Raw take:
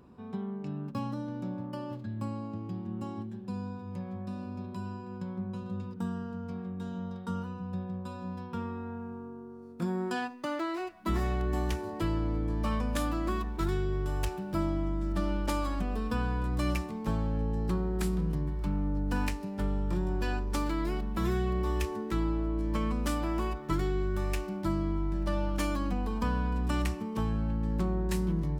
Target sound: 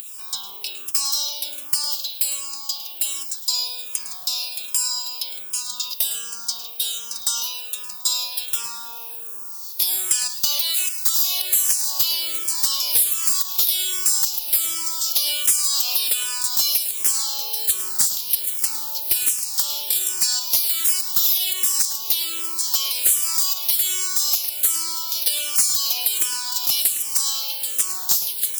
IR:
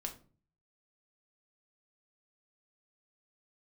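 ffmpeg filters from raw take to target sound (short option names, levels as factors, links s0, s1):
-filter_complex "[0:a]highpass=1000,aemphasis=mode=production:type=riaa,acompressor=threshold=0.00891:ratio=10,asoftclip=type=tanh:threshold=0.0178,aexciter=amount=13.2:drive=5.8:freq=2900,volume=6.31,asoftclip=hard,volume=0.158,asplit=2[s0][s1];[1:a]atrim=start_sample=2205,adelay=107[s2];[s1][s2]afir=irnorm=-1:irlink=0,volume=0.251[s3];[s0][s3]amix=inputs=2:normalize=0,alimiter=level_in=7.5:limit=0.891:release=50:level=0:latency=1,asplit=2[s4][s5];[s5]afreqshift=-1.3[s6];[s4][s6]amix=inputs=2:normalize=1,volume=0.447"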